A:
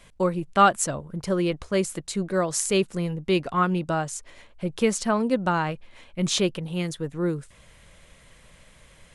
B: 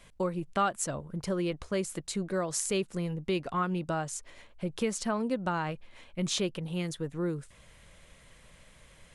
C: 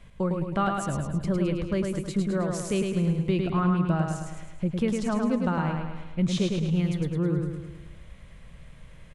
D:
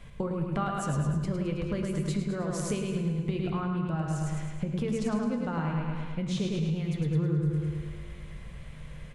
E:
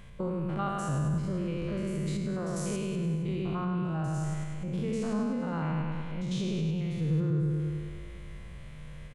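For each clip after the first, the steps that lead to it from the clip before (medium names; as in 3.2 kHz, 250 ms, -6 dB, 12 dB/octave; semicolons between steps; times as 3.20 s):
compression 2:1, threshold -26 dBFS, peak gain reduction 8.5 dB; trim -3.5 dB
tone controls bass +10 dB, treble -8 dB; feedback delay 106 ms, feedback 53%, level -4 dB
compression, threshold -31 dBFS, peak gain reduction 11.5 dB; on a send at -5 dB: reverberation RT60 1.4 s, pre-delay 3 ms; on the sum: trim +2.5 dB
spectrogram pixelated in time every 100 ms; delay 465 ms -22 dB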